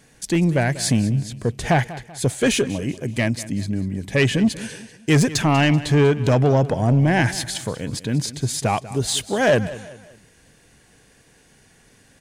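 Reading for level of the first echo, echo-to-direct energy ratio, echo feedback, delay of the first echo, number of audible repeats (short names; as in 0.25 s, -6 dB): -16.5 dB, -15.5 dB, 40%, 0.192 s, 3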